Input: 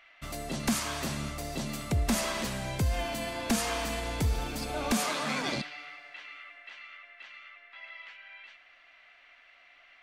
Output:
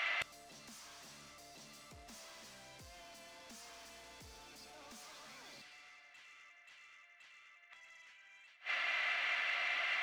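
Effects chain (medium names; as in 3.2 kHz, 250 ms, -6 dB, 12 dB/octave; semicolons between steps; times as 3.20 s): overdrive pedal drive 27 dB, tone 7.6 kHz, clips at -20.5 dBFS; dynamic bell 5.6 kHz, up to +6 dB, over -45 dBFS, Q 1.6; inverted gate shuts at -27 dBFS, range -31 dB; trim +1 dB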